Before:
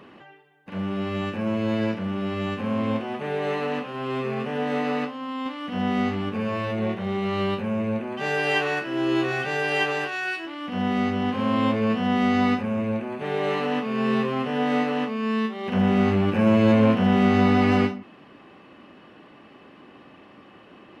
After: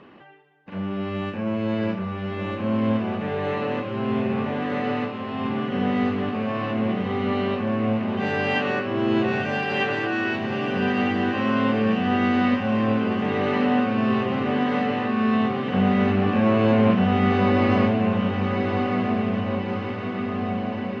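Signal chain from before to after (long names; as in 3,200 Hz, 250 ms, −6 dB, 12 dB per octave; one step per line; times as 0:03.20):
high-frequency loss of the air 130 metres
feedback delay with all-pass diffusion 1,217 ms, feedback 67%, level −4 dB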